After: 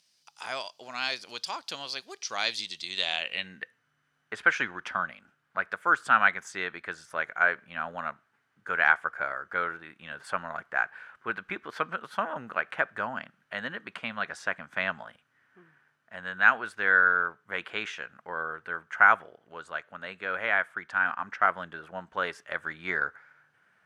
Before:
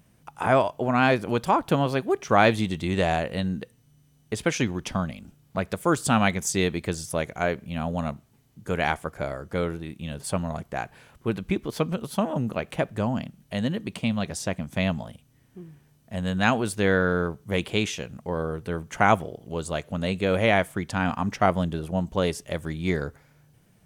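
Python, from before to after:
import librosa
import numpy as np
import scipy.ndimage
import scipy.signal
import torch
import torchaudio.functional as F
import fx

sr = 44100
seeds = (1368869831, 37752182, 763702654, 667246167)

y = fx.filter_sweep_bandpass(x, sr, from_hz=4800.0, to_hz=1500.0, start_s=2.82, end_s=3.79, q=4.2)
y = fx.rider(y, sr, range_db=4, speed_s=2.0)
y = y * librosa.db_to_amplitude(8.0)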